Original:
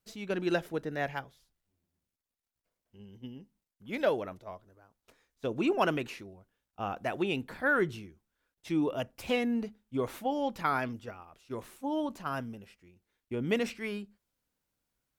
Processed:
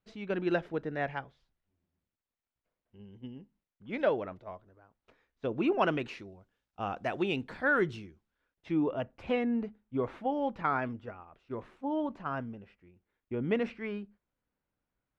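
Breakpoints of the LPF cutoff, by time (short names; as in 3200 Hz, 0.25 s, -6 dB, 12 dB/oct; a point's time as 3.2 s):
5.67 s 2800 Hz
6.3 s 5600 Hz
8.02 s 5600 Hz
8.78 s 2100 Hz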